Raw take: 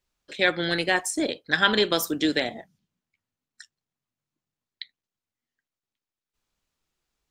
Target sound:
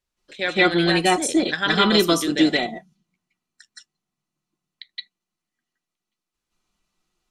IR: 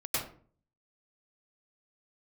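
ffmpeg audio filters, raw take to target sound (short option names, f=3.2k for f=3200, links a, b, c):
-filter_complex "[1:a]atrim=start_sample=2205,atrim=end_sample=4410,asetrate=24696,aresample=44100[a];[0:a][a]afir=irnorm=-1:irlink=0,volume=-1dB"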